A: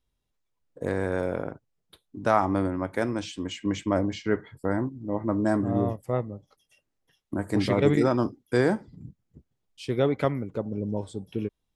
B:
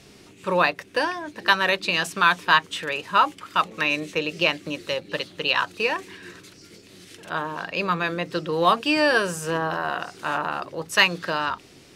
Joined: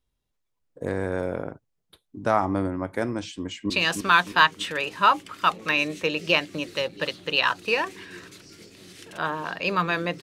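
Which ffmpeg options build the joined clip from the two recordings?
-filter_complex "[0:a]apad=whole_dur=10.22,atrim=end=10.22,atrim=end=3.702[s0];[1:a]atrim=start=1.818:end=8.34[s1];[s0][s1]acrossfade=d=0.004:c1=hsin:c2=hsin,asplit=2[s2][s3];[s3]afade=t=in:st=3.38:d=0.01,afade=t=out:st=3.7:d=0.01,aecho=0:1:310|620|930|1240|1550|1860:0.530884|0.265442|0.132721|0.0663606|0.0331803|0.0165901[s4];[s2][s4]amix=inputs=2:normalize=0"

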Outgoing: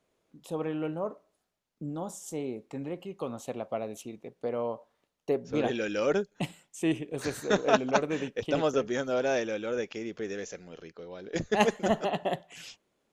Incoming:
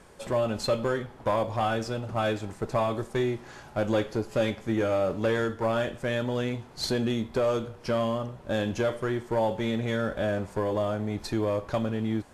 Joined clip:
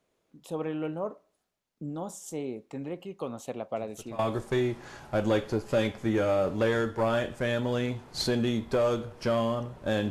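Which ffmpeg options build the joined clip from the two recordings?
-filter_complex "[1:a]asplit=2[s0][s1];[0:a]apad=whole_dur=10.1,atrim=end=10.1,atrim=end=4.192[s2];[s1]atrim=start=2.818:end=8.73[s3];[s0]atrim=start=2.39:end=2.82,asetpts=PTS-STARTPTS,volume=0.141,afade=t=in:d=0.004:c=hsin,afade=t=out:st=0.426:d=0.004:c=hsin,adelay=3760[s4];[s2][s3]acrossfade=d=0.004:c1=hsin:c2=hsin[s5];[s5][s4]amix=inputs=2:normalize=0"

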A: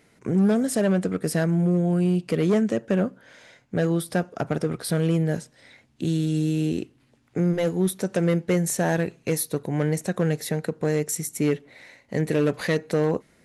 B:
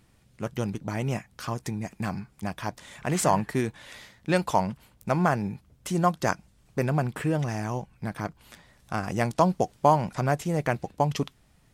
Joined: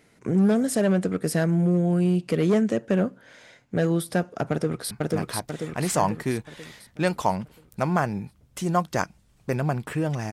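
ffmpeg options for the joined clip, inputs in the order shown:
-filter_complex "[0:a]apad=whole_dur=10.32,atrim=end=10.32,atrim=end=4.912[s0];[1:a]atrim=start=2.198:end=7.61[s1];[s0][s1]acrossfade=d=0.004:c1=hsin:c2=hsin,asplit=2[s2][s3];[s3]afade=t=in:st=4.51:d=0.01,afade=t=out:st=4.91:d=0.01,aecho=0:1:490|980|1470|1960|2450|2940|3430:0.944061|0.47203|0.236015|0.118008|0.0590038|0.0295019|0.014751[s4];[s2][s4]amix=inputs=2:normalize=0"

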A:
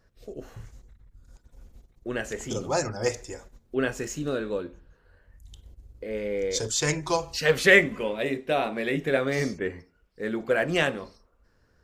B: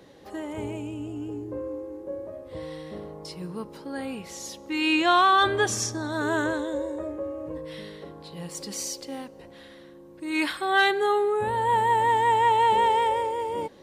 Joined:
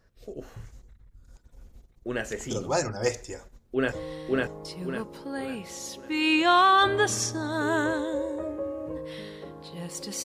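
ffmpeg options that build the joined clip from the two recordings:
-filter_complex "[0:a]apad=whole_dur=10.24,atrim=end=10.24,atrim=end=3.922[s0];[1:a]atrim=start=2.518:end=8.84[s1];[s0][s1]acrossfade=d=0.004:c1=hsin:c2=hsin,asplit=2[s2][s3];[s3]afade=t=in:st=3.33:d=0.01,afade=t=out:st=3.92:d=0.01,aecho=0:1:550|1100|1650|2200|2750:0.944061|0.377624|0.15105|0.0604199|0.024168[s4];[s2][s4]amix=inputs=2:normalize=0"

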